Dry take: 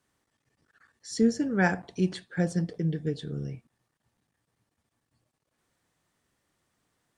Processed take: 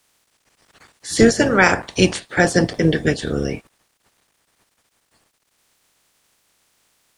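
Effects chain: spectral limiter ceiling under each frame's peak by 21 dB; maximiser +13.5 dB; gain -1 dB

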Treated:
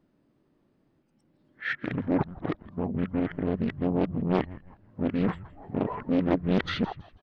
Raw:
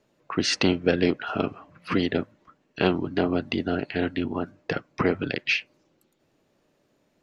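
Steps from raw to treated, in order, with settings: whole clip reversed; high shelf 2100 Hz -11.5 dB; in parallel at -6.5 dB: soft clip -22.5 dBFS, distortion -8 dB; on the sum: formant shift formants -6 st; on a send: frequency-shifting echo 0.164 s, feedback 33%, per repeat -96 Hz, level -18.5 dB; on the sum: Doppler distortion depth 0.84 ms; gain -2.5 dB

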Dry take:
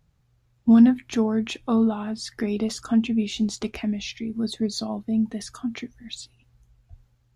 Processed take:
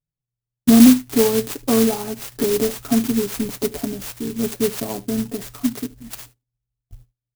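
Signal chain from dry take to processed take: low shelf 330 Hz +7 dB; comb 7.1 ms, depth 73%; gate -43 dBFS, range -32 dB; bell 490 Hz +5 dB 1.4 oct; echo 75 ms -20.5 dB; clock jitter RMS 0.14 ms

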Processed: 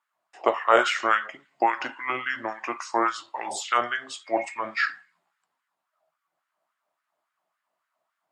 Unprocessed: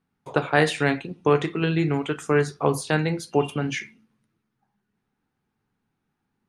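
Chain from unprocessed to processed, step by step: LFO high-pass sine 4.6 Hz 770–2000 Hz; varispeed -22%

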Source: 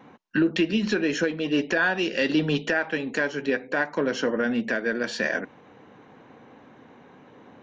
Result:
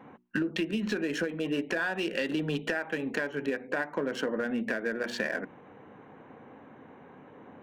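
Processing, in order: Wiener smoothing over 9 samples; notches 60/120/180/240/300/360 Hz; compressor, threshold -27 dBFS, peak gain reduction 10 dB

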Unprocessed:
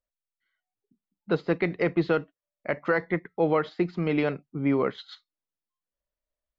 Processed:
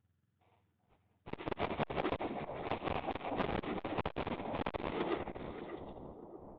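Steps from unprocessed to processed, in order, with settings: spectrum mirrored in octaves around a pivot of 1200 Hz; 1.96–2.68 tilt -4 dB/oct; in parallel at -0.5 dB: limiter -23.5 dBFS, peak gain reduction 8 dB; on the sum: compressor 10:1, threshold -29 dBFS, peak gain reduction 10 dB; sample-rate reducer 1600 Hz, jitter 20%; flange 1.8 Hz, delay 8.5 ms, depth 8.5 ms, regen -7%; tremolo 17 Hz, depth 30%; split-band echo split 940 Hz, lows 0.61 s, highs 83 ms, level -10.5 dB; downsampling 8000 Hz; on a send: delay with a stepping band-pass 0.192 s, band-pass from 250 Hz, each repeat 1.4 oct, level -4 dB; on the sum: core saturation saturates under 720 Hz; gain +5.5 dB

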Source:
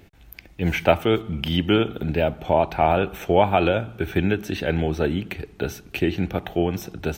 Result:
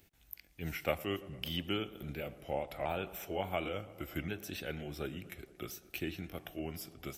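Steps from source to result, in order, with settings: repeated pitch sweeps -2.5 st, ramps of 1.427 s; pre-emphasis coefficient 0.8; tape echo 0.114 s, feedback 86%, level -18.5 dB, low-pass 2200 Hz; gain -3.5 dB

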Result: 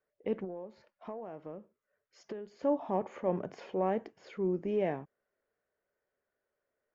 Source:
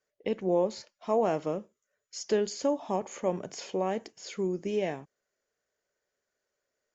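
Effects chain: LPF 1800 Hz 12 dB/oct; transient shaper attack -4 dB, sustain +1 dB; 0.44–2.63 compressor 16:1, threshold -39 dBFS, peak gain reduction 18 dB

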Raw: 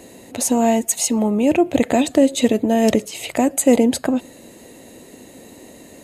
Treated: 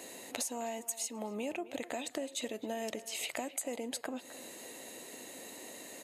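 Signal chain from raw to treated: HPF 900 Hz 6 dB/oct; compressor 10:1, threshold -34 dBFS, peak gain reduction 19 dB; speakerphone echo 0.26 s, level -15 dB; gain -1 dB

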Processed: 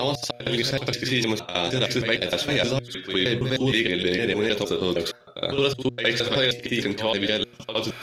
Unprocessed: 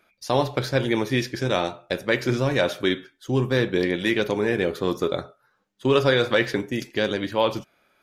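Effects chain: slices in reverse order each 0.155 s, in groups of 3; dynamic EQ 1200 Hz, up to -7 dB, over -37 dBFS, Q 1.1; reverse; upward compressor, threshold -29 dBFS; reverse; de-hum 120.3 Hz, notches 6; on a send: reverse echo 65 ms -12 dB; on the sum: limiter -15 dBFS, peak gain reduction 6.5 dB; bell 3600 Hz +9 dB 2.1 oct; gain +1 dB

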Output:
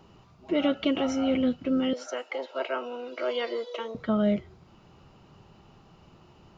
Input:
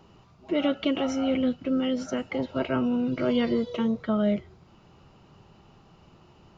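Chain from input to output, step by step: 1.93–3.95 HPF 440 Hz 24 dB/oct

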